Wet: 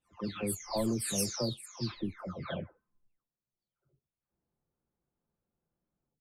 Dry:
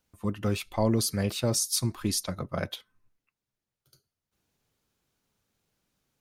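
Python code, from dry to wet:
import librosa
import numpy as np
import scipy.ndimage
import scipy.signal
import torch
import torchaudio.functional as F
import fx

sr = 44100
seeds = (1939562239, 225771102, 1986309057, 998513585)

y = fx.spec_delay(x, sr, highs='early', ms=542)
y = fx.env_lowpass(y, sr, base_hz=940.0, full_db=-24.0)
y = y * 10.0 ** (-4.5 / 20.0)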